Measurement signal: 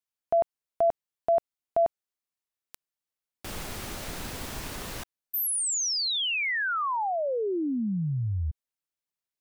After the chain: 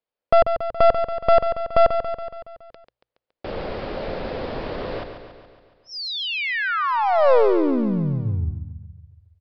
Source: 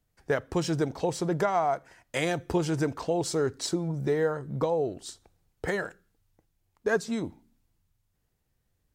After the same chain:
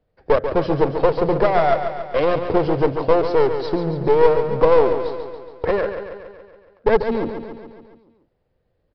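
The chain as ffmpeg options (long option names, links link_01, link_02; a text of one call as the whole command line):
ffmpeg -i in.wav -af "lowpass=frequency=2400:poles=1,equalizer=frequency=520:width=1.5:gain=13,bandreject=frequency=60:width_type=h:width=6,bandreject=frequency=120:width_type=h:width=6,aresample=11025,aeval=exprs='clip(val(0),-1,0.0596)':channel_layout=same,aresample=44100,aecho=1:1:140|280|420|560|700|840|980:0.376|0.222|0.131|0.0772|0.0455|0.0269|0.0159,volume=4.5dB" out.wav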